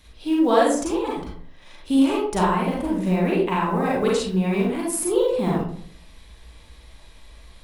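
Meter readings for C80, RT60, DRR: 6.0 dB, 0.55 s, -4.5 dB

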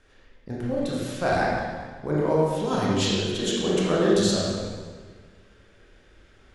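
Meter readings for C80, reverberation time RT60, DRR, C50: 0.5 dB, 1.5 s, -6.0 dB, -2.0 dB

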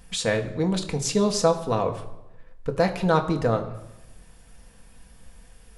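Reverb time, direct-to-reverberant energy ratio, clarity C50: 0.95 s, 3.5 dB, 12.5 dB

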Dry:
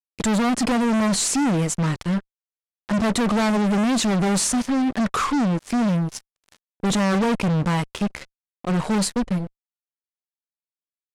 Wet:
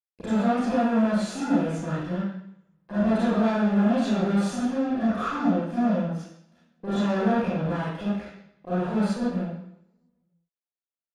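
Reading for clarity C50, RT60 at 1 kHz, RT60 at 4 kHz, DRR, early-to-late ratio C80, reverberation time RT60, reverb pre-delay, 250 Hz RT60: -4.5 dB, 0.75 s, 0.75 s, -12.5 dB, 2.5 dB, 0.70 s, 30 ms, 0.75 s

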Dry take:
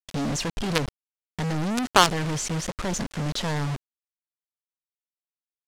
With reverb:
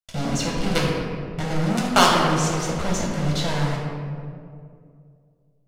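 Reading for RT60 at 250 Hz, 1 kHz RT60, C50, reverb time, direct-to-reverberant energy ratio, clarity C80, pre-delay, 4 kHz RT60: 2.7 s, 2.0 s, 0.5 dB, 2.3 s, -4.0 dB, 2.0 dB, 6 ms, 1.1 s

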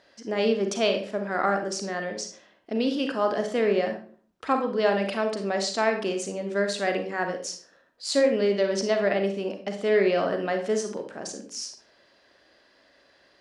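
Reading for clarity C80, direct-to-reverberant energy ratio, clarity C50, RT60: 13.0 dB, 5.0 dB, 7.5 dB, 0.50 s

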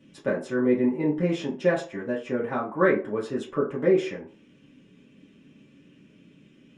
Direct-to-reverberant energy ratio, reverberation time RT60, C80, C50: -5.5 dB, 0.45 s, 14.5 dB, 9.0 dB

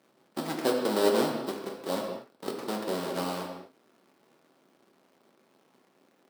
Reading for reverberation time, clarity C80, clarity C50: no single decay rate, 5.0 dB, 3.5 dB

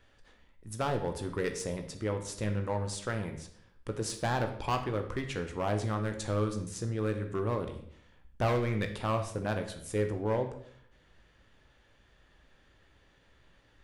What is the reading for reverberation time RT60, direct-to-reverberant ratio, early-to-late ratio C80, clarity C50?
0.60 s, 5.0 dB, 12.5 dB, 9.5 dB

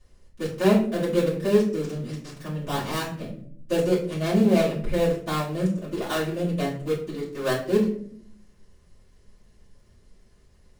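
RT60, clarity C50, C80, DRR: 0.60 s, 7.5 dB, 11.0 dB, -10.5 dB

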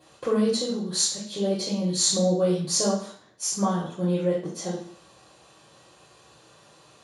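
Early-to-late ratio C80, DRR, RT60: 7.5 dB, -8.0 dB, 0.55 s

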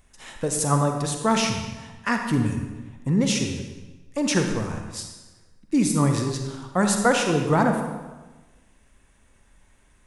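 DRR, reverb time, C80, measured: 4.0 dB, 1.2 s, 6.5 dB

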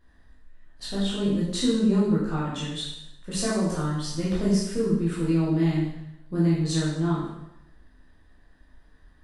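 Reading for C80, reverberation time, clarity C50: 4.0 dB, 0.85 s, 0.5 dB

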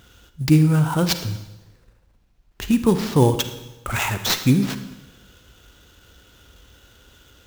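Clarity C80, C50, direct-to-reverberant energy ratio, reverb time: 12.5 dB, 10.5 dB, 9.5 dB, 1.0 s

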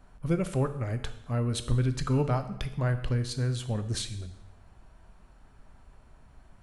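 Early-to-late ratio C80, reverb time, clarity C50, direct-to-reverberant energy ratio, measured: 14.0 dB, 0.90 s, 11.5 dB, 9.0 dB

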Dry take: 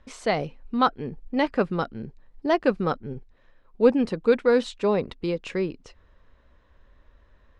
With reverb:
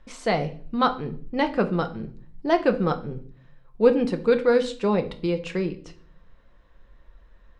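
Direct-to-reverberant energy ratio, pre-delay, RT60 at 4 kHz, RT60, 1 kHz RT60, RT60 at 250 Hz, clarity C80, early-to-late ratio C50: 7.0 dB, 4 ms, 0.40 s, 0.50 s, 0.45 s, 0.80 s, 19.0 dB, 15.0 dB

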